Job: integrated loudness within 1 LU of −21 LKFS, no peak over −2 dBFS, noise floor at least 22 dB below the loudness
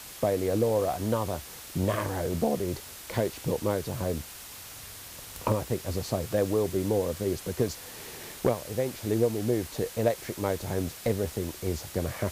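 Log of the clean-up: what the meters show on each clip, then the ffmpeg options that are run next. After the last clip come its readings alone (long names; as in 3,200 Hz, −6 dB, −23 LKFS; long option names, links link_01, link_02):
background noise floor −44 dBFS; target noise floor −52 dBFS; integrated loudness −30.0 LKFS; sample peak −13.0 dBFS; target loudness −21.0 LKFS
→ -af "afftdn=noise_reduction=8:noise_floor=-44"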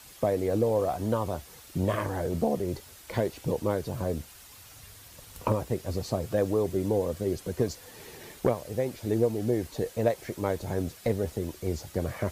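background noise floor −51 dBFS; target noise floor −52 dBFS
→ -af "afftdn=noise_reduction=6:noise_floor=-51"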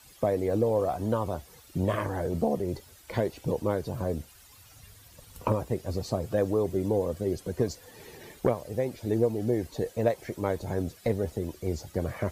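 background noise floor −54 dBFS; integrated loudness −30.0 LKFS; sample peak −13.5 dBFS; target loudness −21.0 LKFS
→ -af "volume=9dB"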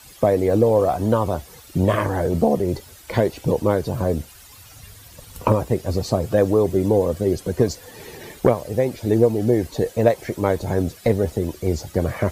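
integrated loudness −21.0 LKFS; sample peak −4.5 dBFS; background noise floor −45 dBFS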